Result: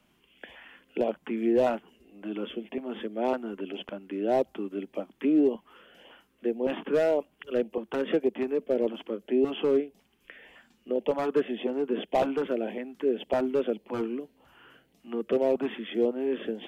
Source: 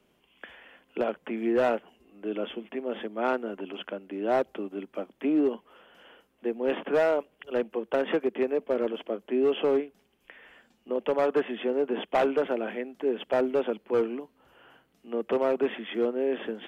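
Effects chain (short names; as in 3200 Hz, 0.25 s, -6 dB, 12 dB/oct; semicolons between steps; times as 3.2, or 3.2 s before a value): dynamic EQ 1800 Hz, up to -6 dB, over -44 dBFS, Q 0.7; LFO notch saw up 1.8 Hz 380–1600 Hz; gain +2.5 dB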